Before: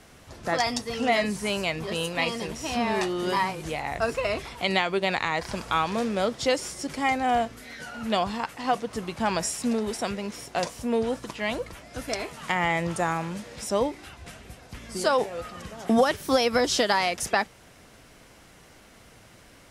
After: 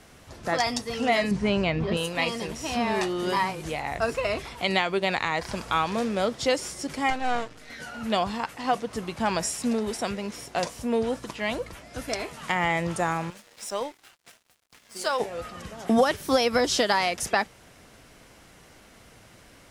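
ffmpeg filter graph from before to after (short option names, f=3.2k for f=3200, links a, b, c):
-filter_complex "[0:a]asettb=1/sr,asplit=3[a][b][c];[a]atrim=end=1.314[d];[b]atrim=start=1.31:end=1.97,asetpts=PTS-STARTPTS,afade=t=in:d=0.004:c=qsin,afade=t=out:st=0.656:d=0.004:c=qsin,lowpass=3.7k,lowshelf=f=380:g=9.5[e];[c]atrim=start=1.966[f];[d][e]acrossfade=d=0.004:c1=hsin:c2=qsin[g];[g][f]acrossfade=d=0.004:c1=qsin:c2=hsin,asettb=1/sr,asplit=3[h][i][j];[h]atrim=end=7.104[k];[i]atrim=start=7.1:end=7.7,asetpts=PTS-STARTPTS,afade=t=in:d=0.004:c=qsin,afade=t=out:st=0.596:d=0.004:c=qsin,aecho=1:1:6.5:0.56,atrim=end_sample=26460,aeval=exprs='max(val(0),0)':c=same,lowpass=8.6k[l];[j]atrim=start=7.696[m];[k][l]acrossfade=d=0.004:c1=hsin:c2=qsin[n];[n][m]acrossfade=d=0.004:c1=qsin:c2=hsin,asettb=1/sr,asplit=3[o][p][q];[o]atrim=end=13.304[r];[p]atrim=start=13.3:end=15.2,asetpts=PTS-STARTPTS,afade=t=in:d=0.004:c=qsin,afade=t=out:st=1.896:d=0.004:c=qsin,highpass=f=840:p=1,aeval=exprs='sgn(val(0))*max(abs(val(0))-0.00447,0)':c=same[s];[q]atrim=start=15.196[t];[r][s]acrossfade=d=0.004:c1=hsin:c2=qsin[u];[u][t]acrossfade=d=0.004:c1=qsin:c2=hsin"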